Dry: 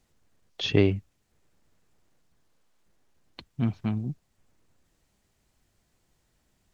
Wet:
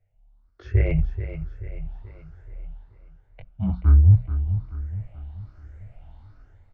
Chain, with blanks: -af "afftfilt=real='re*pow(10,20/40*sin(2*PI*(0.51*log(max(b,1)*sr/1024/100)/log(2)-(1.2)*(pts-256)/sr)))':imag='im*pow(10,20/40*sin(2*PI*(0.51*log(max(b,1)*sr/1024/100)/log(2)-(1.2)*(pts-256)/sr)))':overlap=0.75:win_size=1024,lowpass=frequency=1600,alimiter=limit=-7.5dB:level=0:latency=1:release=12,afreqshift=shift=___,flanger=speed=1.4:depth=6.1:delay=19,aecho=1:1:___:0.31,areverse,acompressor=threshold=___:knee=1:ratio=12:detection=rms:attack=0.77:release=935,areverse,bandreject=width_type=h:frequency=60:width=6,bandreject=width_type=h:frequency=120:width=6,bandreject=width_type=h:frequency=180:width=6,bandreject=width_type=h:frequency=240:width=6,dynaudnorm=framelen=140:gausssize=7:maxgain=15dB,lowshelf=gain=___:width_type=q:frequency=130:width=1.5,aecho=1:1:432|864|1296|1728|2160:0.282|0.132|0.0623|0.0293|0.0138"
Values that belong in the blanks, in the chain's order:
-36, 1.4, -33dB, 9